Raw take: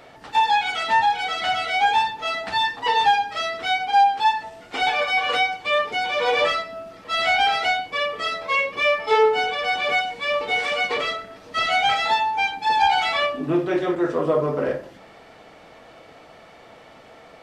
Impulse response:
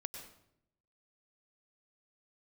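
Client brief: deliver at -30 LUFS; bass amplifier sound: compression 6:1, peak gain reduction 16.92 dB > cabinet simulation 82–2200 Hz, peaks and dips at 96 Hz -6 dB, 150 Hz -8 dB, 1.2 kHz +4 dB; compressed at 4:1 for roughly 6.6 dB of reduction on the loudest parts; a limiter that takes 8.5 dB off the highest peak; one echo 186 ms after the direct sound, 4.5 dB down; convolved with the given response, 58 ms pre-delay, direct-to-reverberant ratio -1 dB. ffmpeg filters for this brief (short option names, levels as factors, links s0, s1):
-filter_complex "[0:a]acompressor=threshold=0.0891:ratio=4,alimiter=limit=0.1:level=0:latency=1,aecho=1:1:186:0.596,asplit=2[s0][s1];[1:a]atrim=start_sample=2205,adelay=58[s2];[s1][s2]afir=irnorm=-1:irlink=0,volume=1.41[s3];[s0][s3]amix=inputs=2:normalize=0,acompressor=threshold=0.0178:ratio=6,highpass=f=82:w=0.5412,highpass=f=82:w=1.3066,equalizer=f=96:t=q:w=4:g=-6,equalizer=f=150:t=q:w=4:g=-8,equalizer=f=1200:t=q:w=4:g=4,lowpass=f=2200:w=0.5412,lowpass=f=2200:w=1.3066,volume=2.24"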